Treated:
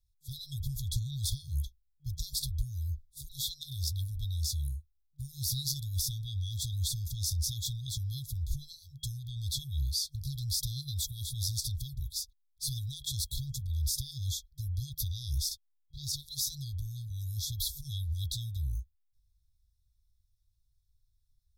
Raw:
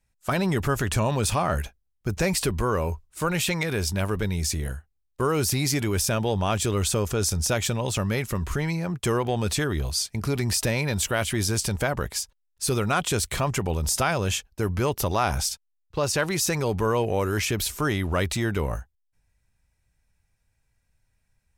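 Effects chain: FFT band-reject 140–3300 Hz; graphic EQ 125/500/1000/2000/8000 Hz -9/+8/+7/-7/-11 dB

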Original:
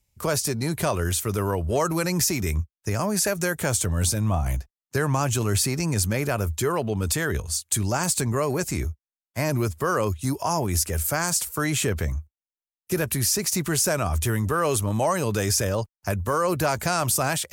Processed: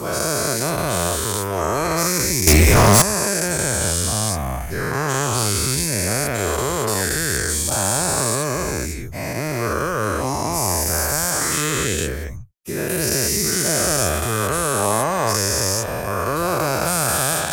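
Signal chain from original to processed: every event in the spectrogram widened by 480 ms; 2.47–3.02 s: waveshaping leveller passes 5; trim -5 dB

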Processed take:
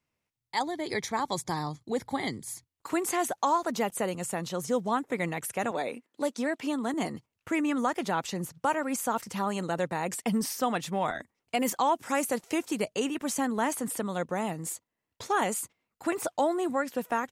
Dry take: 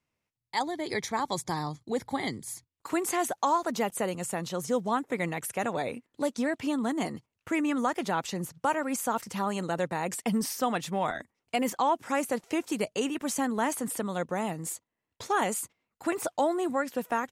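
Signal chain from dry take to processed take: 5.71–6.94 s: high-pass 230 Hz 12 dB/octave; 11.60–12.66 s: treble shelf 5 kHz +6.5 dB

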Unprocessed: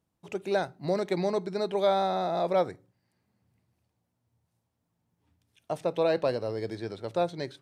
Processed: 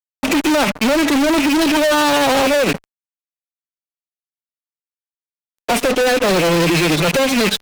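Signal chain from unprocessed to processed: rattle on loud lows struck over -45 dBFS, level -30 dBFS; compression 3:1, threshold -33 dBFS, peak gain reduction 10 dB; formant-preserving pitch shift +7.5 st; tremolo 13 Hz, depth 70%; fuzz box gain 57 dB, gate -59 dBFS

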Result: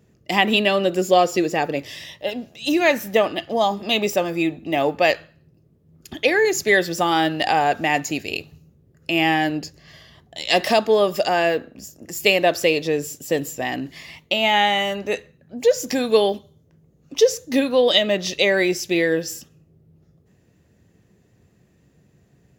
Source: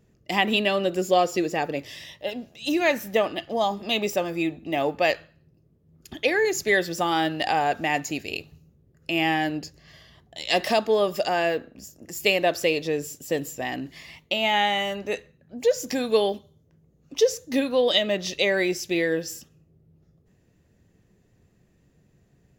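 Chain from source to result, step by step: high-pass 61 Hz; trim +4.5 dB

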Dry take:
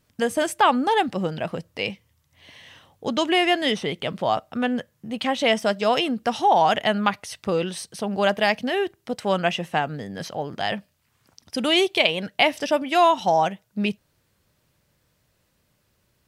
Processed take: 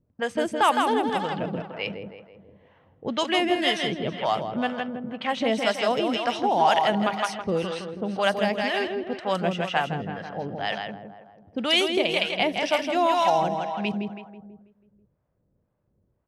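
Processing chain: feedback delay 163 ms, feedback 54%, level -5 dB; harmonic tremolo 2 Hz, depth 70%, crossover 570 Hz; level-controlled noise filter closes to 660 Hz, open at -20 dBFS

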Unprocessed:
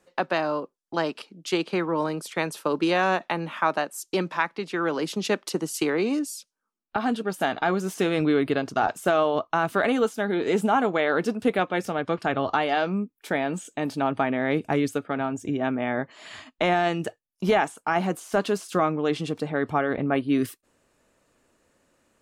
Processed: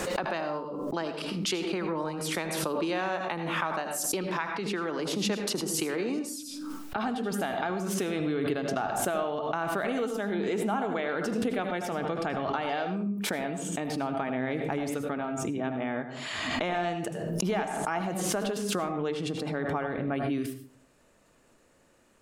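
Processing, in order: compression 2:1, threshold -38 dBFS, peak gain reduction 12 dB; reverberation RT60 0.40 s, pre-delay 78 ms, DRR 7.5 dB; swell ahead of each attack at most 25 dB/s; trim +1.5 dB

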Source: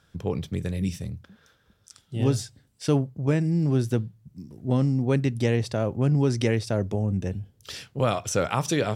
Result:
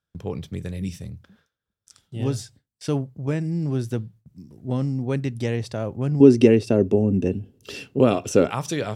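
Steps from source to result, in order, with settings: 6.20–8.51 s: small resonant body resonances 270/380/2700 Hz, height 16 dB, ringing for 35 ms; gate with hold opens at -42 dBFS; trim -2 dB

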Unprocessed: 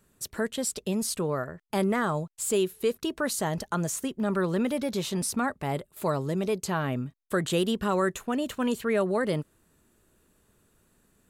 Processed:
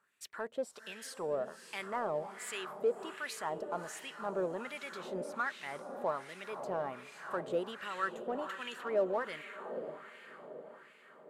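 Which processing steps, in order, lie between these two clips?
treble shelf 8 kHz +9.5 dB; echo that smears into a reverb 535 ms, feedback 58%, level -10 dB; LFO band-pass sine 1.3 Hz 550–2400 Hz; in parallel at -9 dB: saturation -39 dBFS, distortion -4 dB; on the sum: trim -2 dB

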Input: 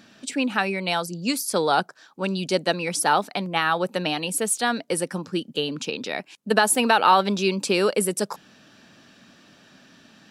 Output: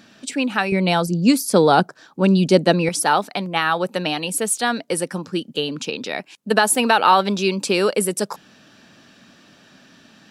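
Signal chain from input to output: 0.72–2.89 s: bass shelf 490 Hz +11.5 dB; trim +2.5 dB

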